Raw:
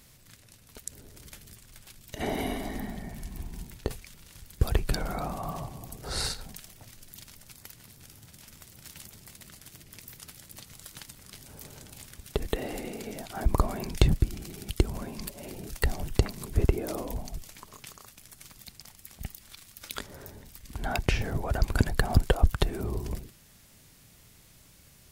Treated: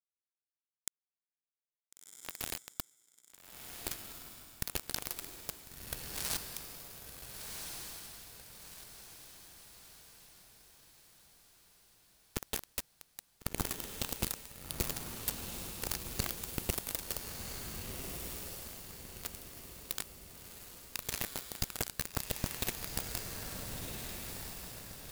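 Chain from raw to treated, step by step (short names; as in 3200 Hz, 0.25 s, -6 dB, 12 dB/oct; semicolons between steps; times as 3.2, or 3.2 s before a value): per-bin compression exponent 0.6; pre-emphasis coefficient 0.8; gate -35 dBFS, range -21 dB; low shelf 120 Hz +2.5 dB; reverse; compressor 10:1, threshold -41 dBFS, peak gain reduction 18 dB; reverse; bit-crush 6-bit; on a send: diffused feedback echo 1.421 s, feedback 47%, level -3.5 dB; on the sum: gain +9 dB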